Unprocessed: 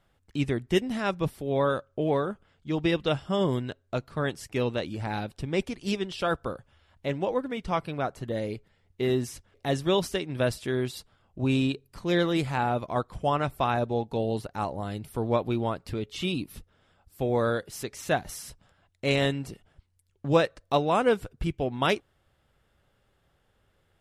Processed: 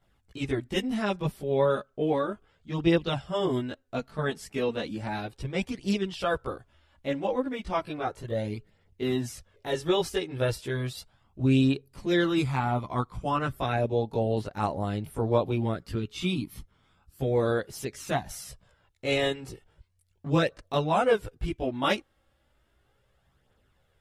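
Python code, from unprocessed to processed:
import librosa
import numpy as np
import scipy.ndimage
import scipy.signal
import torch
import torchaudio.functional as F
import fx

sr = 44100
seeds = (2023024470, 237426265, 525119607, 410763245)

y = fx.chorus_voices(x, sr, voices=2, hz=0.17, base_ms=17, depth_ms=2.6, mix_pct=65)
y = y * librosa.db_to_amplitude(2.0)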